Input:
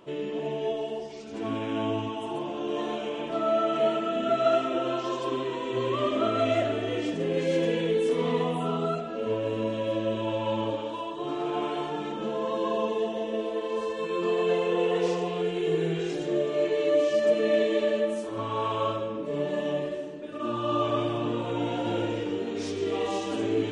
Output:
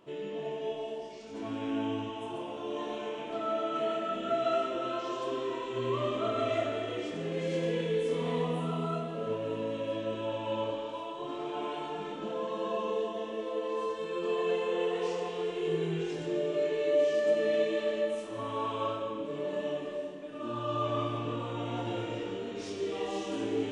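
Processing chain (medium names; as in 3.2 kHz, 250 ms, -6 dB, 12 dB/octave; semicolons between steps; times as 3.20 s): flutter echo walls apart 4.3 m, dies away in 0.22 s; Schroeder reverb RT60 2.6 s, combs from 29 ms, DRR 5 dB; trim -7 dB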